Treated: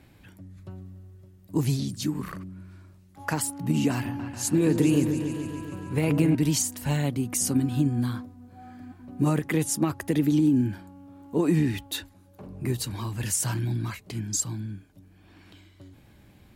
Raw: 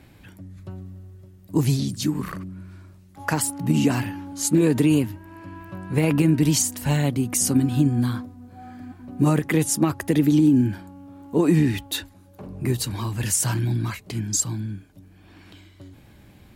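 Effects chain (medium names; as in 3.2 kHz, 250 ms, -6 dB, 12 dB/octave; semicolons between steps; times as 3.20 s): 3.91–6.35 s: delay with an opening low-pass 141 ms, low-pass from 750 Hz, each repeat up 2 oct, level -6 dB; trim -4.5 dB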